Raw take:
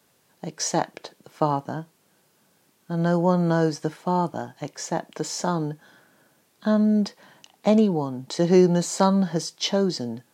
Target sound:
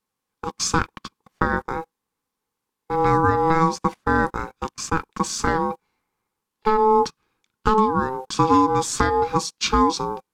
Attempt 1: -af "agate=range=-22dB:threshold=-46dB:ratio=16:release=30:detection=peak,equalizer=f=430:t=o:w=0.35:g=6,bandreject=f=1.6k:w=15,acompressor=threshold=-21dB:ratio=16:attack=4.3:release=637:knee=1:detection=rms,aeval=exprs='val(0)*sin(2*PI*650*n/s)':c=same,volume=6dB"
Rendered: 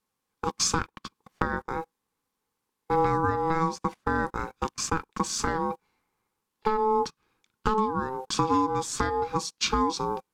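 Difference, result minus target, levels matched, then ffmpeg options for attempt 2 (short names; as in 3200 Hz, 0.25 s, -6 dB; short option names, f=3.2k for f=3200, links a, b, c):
compressor: peak gain reduction +7.5 dB
-af "agate=range=-22dB:threshold=-46dB:ratio=16:release=30:detection=peak,equalizer=f=430:t=o:w=0.35:g=6,bandreject=f=1.6k:w=15,acompressor=threshold=-13dB:ratio=16:attack=4.3:release=637:knee=1:detection=rms,aeval=exprs='val(0)*sin(2*PI*650*n/s)':c=same,volume=6dB"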